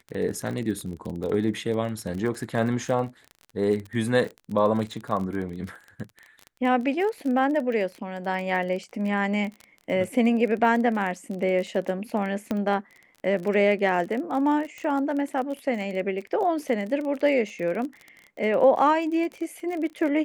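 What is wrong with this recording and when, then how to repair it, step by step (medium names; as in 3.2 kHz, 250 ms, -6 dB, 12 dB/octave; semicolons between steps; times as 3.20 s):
crackle 28 per s -31 dBFS
12.51 s: pop -15 dBFS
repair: de-click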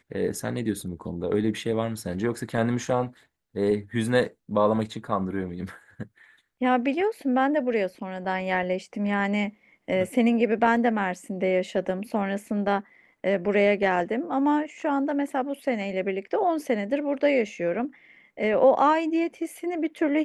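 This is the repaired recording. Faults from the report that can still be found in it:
nothing left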